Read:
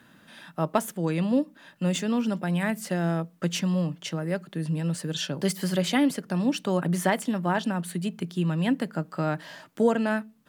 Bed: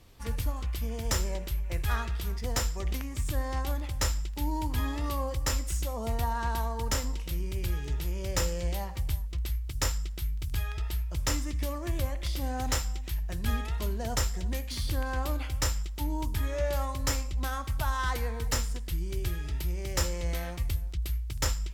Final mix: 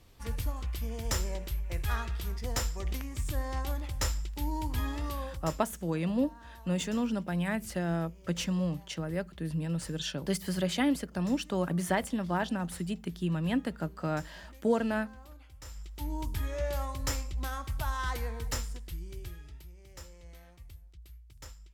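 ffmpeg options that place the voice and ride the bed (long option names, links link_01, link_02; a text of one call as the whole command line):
ffmpeg -i stem1.wav -i stem2.wav -filter_complex "[0:a]adelay=4850,volume=-5dB[link_01];[1:a]volume=14.5dB,afade=type=out:start_time=4.98:duration=0.66:silence=0.125893,afade=type=in:start_time=15.64:duration=0.5:silence=0.141254,afade=type=out:start_time=18.29:duration=1.42:silence=0.158489[link_02];[link_01][link_02]amix=inputs=2:normalize=0" out.wav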